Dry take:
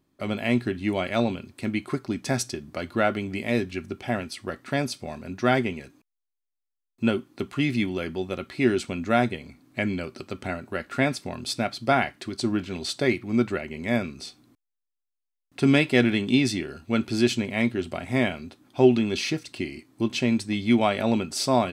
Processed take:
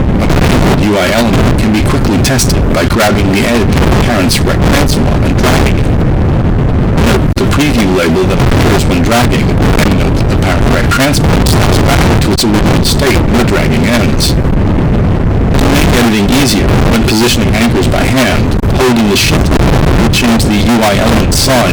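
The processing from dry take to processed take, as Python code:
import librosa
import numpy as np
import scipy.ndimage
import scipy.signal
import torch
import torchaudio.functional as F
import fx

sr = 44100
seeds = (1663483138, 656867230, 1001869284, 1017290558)

y = fx.dmg_wind(x, sr, seeds[0], corner_hz=160.0, level_db=-21.0)
y = fx.level_steps(y, sr, step_db=21)
y = fx.fuzz(y, sr, gain_db=48.0, gate_db=-57.0)
y = y * 10.0 ** (7.0 / 20.0)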